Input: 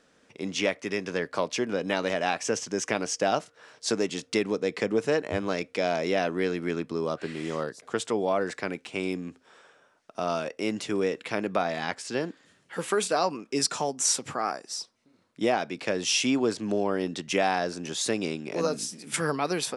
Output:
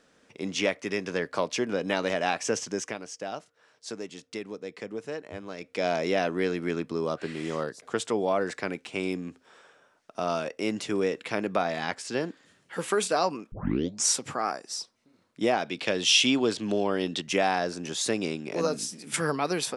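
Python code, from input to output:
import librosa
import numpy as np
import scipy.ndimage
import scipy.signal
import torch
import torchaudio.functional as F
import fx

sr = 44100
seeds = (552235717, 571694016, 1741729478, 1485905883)

y = fx.peak_eq(x, sr, hz=3300.0, db=9.0, octaves=0.72, at=(15.66, 17.22))
y = fx.edit(y, sr, fx.fade_down_up(start_s=2.68, length_s=3.19, db=-10.5, fade_s=0.3),
    fx.tape_start(start_s=13.52, length_s=0.54), tone=tone)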